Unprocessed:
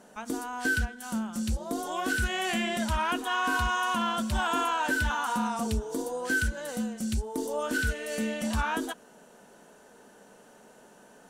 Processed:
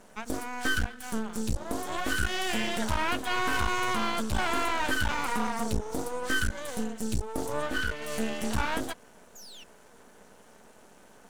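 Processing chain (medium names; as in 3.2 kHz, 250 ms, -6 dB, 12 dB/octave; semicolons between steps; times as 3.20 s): 7.62–8.02 s: tone controls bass -5 dB, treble -9 dB; 9.35–9.64 s: painted sound fall 2.6–7.2 kHz -47 dBFS; half-wave rectifier; trim +3.5 dB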